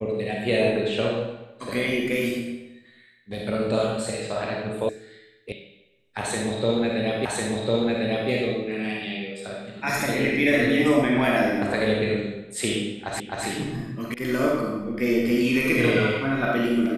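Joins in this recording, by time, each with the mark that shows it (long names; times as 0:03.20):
0:04.89: cut off before it has died away
0:05.52: cut off before it has died away
0:07.25: the same again, the last 1.05 s
0:13.20: the same again, the last 0.26 s
0:14.14: cut off before it has died away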